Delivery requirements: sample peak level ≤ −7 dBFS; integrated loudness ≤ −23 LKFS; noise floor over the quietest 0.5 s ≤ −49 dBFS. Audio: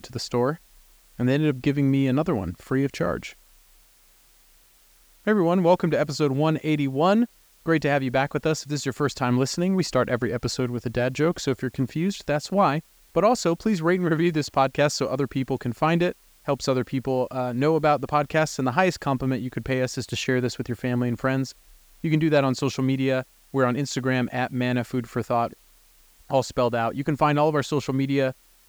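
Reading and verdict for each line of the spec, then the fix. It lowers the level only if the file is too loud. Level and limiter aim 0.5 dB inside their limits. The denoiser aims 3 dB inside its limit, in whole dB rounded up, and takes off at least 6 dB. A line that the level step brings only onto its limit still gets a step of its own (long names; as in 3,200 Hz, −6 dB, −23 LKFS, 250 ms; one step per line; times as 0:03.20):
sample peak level −6.0 dBFS: out of spec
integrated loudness −24.0 LKFS: in spec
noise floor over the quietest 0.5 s −57 dBFS: in spec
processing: brickwall limiter −7.5 dBFS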